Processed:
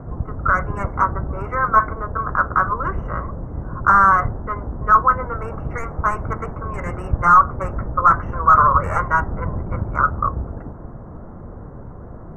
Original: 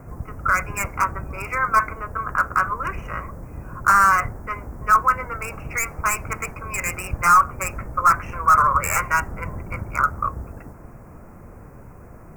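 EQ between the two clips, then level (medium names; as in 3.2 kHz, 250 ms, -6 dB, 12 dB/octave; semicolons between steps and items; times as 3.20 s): boxcar filter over 18 samples; distance through air 51 m; +7.0 dB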